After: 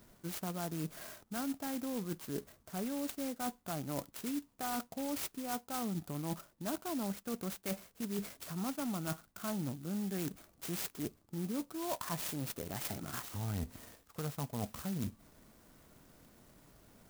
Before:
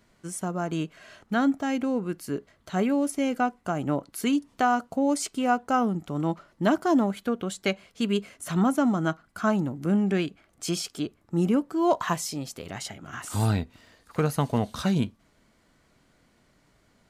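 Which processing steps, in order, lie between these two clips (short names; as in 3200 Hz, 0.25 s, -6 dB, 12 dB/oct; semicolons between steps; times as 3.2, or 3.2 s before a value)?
dynamic EQ 370 Hz, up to -4 dB, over -36 dBFS, Q 1; reverse; compressor 6:1, threshold -39 dBFS, peak gain reduction 18.5 dB; reverse; clock jitter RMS 0.11 ms; gain +2.5 dB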